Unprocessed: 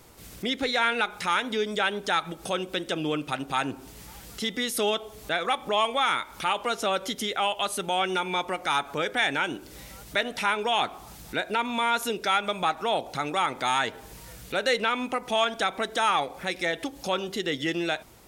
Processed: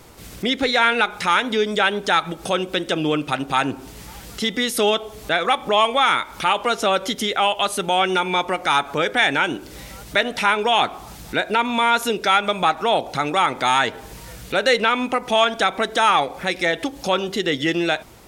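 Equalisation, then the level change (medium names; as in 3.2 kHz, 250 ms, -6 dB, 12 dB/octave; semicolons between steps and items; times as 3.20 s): treble shelf 7.9 kHz -5 dB; +7.5 dB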